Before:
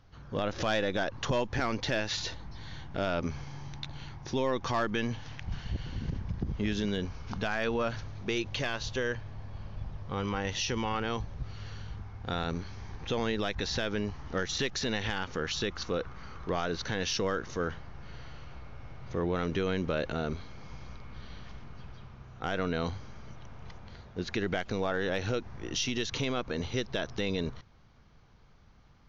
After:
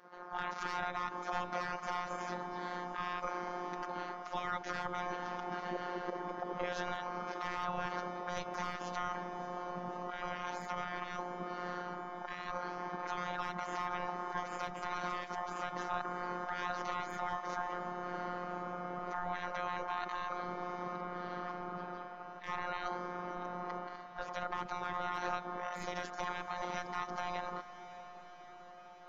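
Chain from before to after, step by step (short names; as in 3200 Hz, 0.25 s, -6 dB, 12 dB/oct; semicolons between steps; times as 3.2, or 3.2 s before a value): spectral gate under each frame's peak -20 dB weak; EQ curve 680 Hz 0 dB, 1200 Hz +2 dB, 3000 Hz -19 dB; limiter -39.5 dBFS, peak gain reduction 7.5 dB; robotiser 178 Hz; diffused feedback echo 0.623 s, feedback 69%, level -14 dB; gain +15.5 dB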